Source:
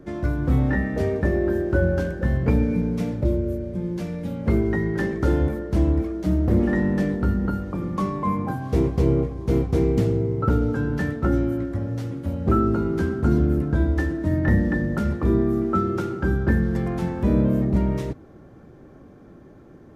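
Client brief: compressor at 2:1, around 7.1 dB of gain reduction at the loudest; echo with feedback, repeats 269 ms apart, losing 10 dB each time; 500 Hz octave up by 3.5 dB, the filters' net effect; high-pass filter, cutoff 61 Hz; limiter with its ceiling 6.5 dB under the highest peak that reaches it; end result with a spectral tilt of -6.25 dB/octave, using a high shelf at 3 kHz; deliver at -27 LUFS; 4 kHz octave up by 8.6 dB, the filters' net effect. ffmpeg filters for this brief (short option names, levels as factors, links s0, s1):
-af "highpass=61,equalizer=f=500:t=o:g=4.5,highshelf=f=3000:g=5,equalizer=f=4000:t=o:g=7,acompressor=threshold=0.0447:ratio=2,alimiter=limit=0.106:level=0:latency=1,aecho=1:1:269|538|807|1076:0.316|0.101|0.0324|0.0104,volume=1.19"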